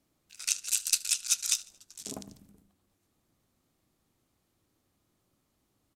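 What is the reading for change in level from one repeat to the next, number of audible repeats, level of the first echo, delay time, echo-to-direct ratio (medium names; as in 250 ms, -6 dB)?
-6.0 dB, 3, -22.5 dB, 75 ms, -21.5 dB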